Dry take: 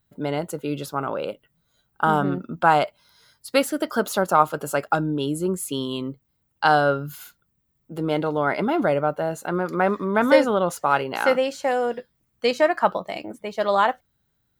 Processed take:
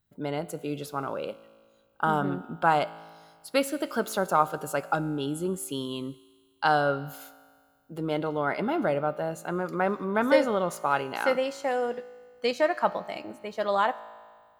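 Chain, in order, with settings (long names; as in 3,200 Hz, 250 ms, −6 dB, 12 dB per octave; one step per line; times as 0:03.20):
tuned comb filter 55 Hz, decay 1.8 s, harmonics all, mix 50%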